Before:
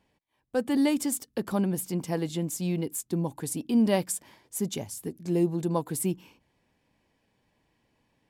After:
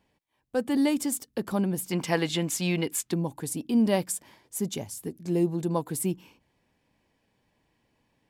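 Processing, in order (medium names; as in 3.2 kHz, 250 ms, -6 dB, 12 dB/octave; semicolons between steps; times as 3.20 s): 1.91–3.14 s: peaking EQ 2.2 kHz +13 dB 3 oct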